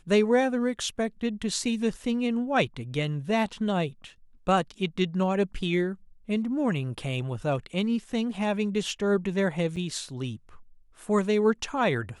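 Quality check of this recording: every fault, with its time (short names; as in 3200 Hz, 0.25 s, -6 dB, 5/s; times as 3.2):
9.76–9.77 gap 5.8 ms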